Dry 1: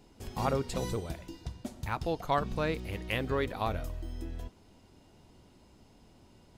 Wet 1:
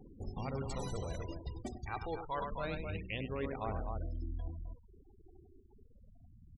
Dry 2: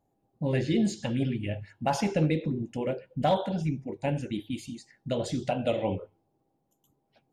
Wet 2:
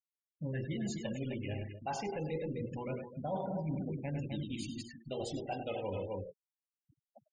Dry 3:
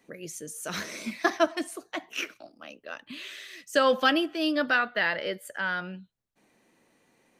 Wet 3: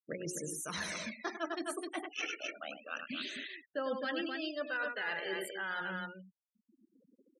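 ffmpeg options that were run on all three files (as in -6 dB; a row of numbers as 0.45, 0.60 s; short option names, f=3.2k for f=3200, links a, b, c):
-filter_complex "[0:a]bandreject=f=60:t=h:w=6,bandreject=f=120:t=h:w=6,bandreject=f=180:t=h:w=6,bandreject=f=240:t=h:w=6,bandreject=f=300:t=h:w=6,bandreject=f=360:t=h:w=6,bandreject=f=420:t=h:w=6,acrossover=split=2000[a][b];[b]acrusher=bits=4:mode=log:mix=0:aa=0.000001[c];[a][c]amix=inputs=2:normalize=0,aphaser=in_gain=1:out_gain=1:delay=2.6:decay=0.53:speed=0.28:type=sinusoidal,aecho=1:1:101|258:0.355|0.355,areverse,acompressor=threshold=-36dB:ratio=5,areverse,afftfilt=real='re*gte(hypot(re,im),0.00562)':imag='im*gte(hypot(re,im),0.00562)':win_size=1024:overlap=0.75"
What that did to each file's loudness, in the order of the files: -6.5, -9.5, -10.5 LU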